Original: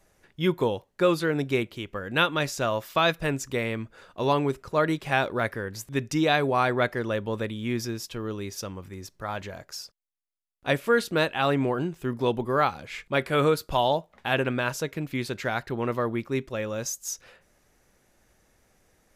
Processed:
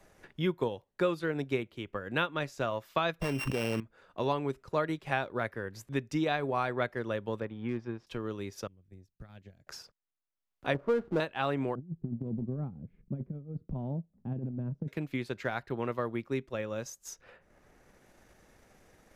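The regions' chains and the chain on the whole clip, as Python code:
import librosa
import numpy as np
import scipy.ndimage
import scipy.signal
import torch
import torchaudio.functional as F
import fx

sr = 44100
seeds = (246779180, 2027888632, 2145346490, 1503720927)

y = fx.chain(x, sr, fx.sample_sort(block=16),
    fx.env_flatten(amount_pct=100), at=(3.21, 3.8))
y = fx.chain(y, sr, fx.law_mismatch(coded='A'),
    fx.lowpass(hz=1800.0, slope=12),
    fx.clip_hard(threshold_db=-22.0), at=(7.4, 8.07))
y = fx.chain(y, sr, fx.tone_stack(knobs='10-0-1'),
    fx.transient(attack_db=10, sustain_db=-5), at=(8.67, 9.67))
y = fx.chain(y, sr, fx.lowpass(hz=1100.0, slope=24),
    fx.power_curve(exponent=0.7), at=(10.74, 11.2))
y = fx.chain(y, sr, fx.lowpass_res(hz=190.0, q=2.1),
    fx.over_compress(threshold_db=-30.0, ratio=-0.5), at=(11.75, 14.88))
y = fx.high_shelf(y, sr, hz=4500.0, db=-7.5)
y = fx.transient(y, sr, attack_db=3, sustain_db=-5)
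y = fx.band_squash(y, sr, depth_pct=40)
y = y * 10.0 ** (-7.0 / 20.0)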